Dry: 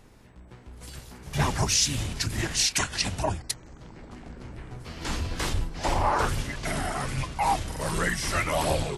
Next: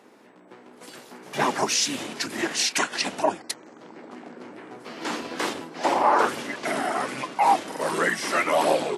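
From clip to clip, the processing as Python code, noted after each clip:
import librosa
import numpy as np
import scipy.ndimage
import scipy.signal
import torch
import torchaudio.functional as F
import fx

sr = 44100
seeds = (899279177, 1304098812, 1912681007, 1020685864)

y = scipy.signal.sosfilt(scipy.signal.butter(4, 250.0, 'highpass', fs=sr, output='sos'), x)
y = fx.high_shelf(y, sr, hz=2900.0, db=-9.0)
y = y * librosa.db_to_amplitude(6.5)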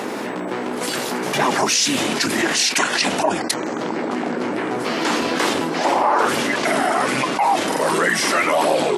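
y = fx.env_flatten(x, sr, amount_pct=70)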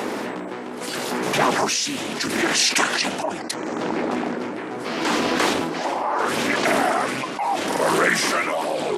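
y = x * (1.0 - 0.57 / 2.0 + 0.57 / 2.0 * np.cos(2.0 * np.pi * 0.75 * (np.arange(len(x)) / sr)))
y = fx.doppler_dist(y, sr, depth_ms=0.25)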